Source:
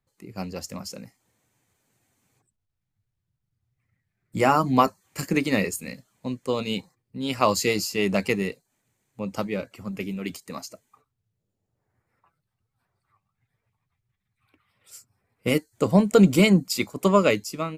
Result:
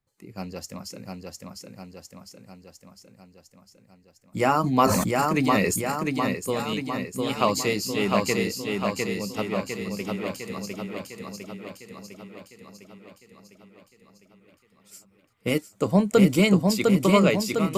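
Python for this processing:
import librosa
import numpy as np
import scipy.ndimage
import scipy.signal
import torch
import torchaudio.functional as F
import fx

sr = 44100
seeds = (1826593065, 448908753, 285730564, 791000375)

y = fx.echo_feedback(x, sr, ms=704, feedback_pct=59, wet_db=-3)
y = fx.sustainer(y, sr, db_per_s=33.0, at=(4.63, 5.88), fade=0.02)
y = F.gain(torch.from_numpy(y), -2.0).numpy()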